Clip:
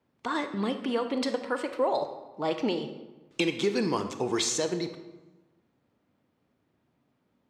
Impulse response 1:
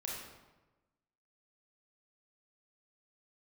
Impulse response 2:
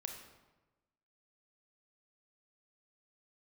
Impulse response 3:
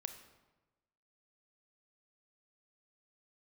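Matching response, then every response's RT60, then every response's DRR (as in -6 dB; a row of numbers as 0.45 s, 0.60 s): 3; 1.1 s, 1.1 s, 1.1 s; -4.0 dB, 3.0 dB, 7.5 dB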